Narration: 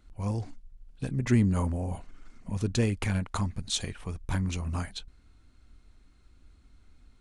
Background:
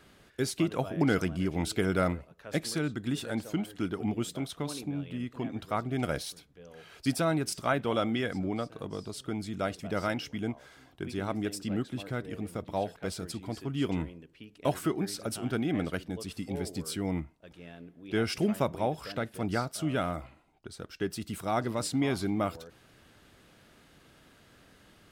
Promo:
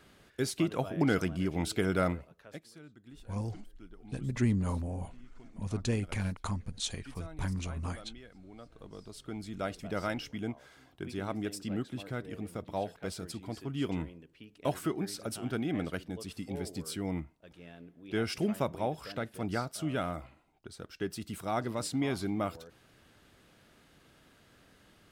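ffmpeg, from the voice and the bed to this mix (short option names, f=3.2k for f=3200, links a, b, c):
-filter_complex "[0:a]adelay=3100,volume=-5dB[a];[1:a]volume=16.5dB,afade=t=out:st=2.28:d=0.32:silence=0.105925,afade=t=in:st=8.47:d=1.28:silence=0.125893[b];[a][b]amix=inputs=2:normalize=0"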